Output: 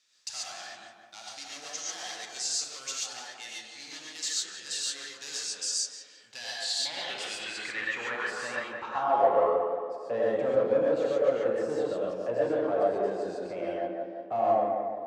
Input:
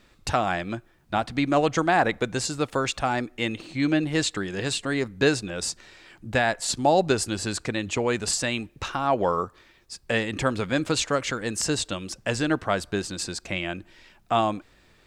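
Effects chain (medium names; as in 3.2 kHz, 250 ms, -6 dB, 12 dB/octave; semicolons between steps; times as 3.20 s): hard clipper -22.5 dBFS, distortion -8 dB; band-pass sweep 5.9 kHz -> 550 Hz, 6.13–9.55 s; tape echo 175 ms, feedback 65%, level -3.5 dB, low-pass 1.7 kHz; gated-style reverb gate 160 ms rising, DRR -4.5 dB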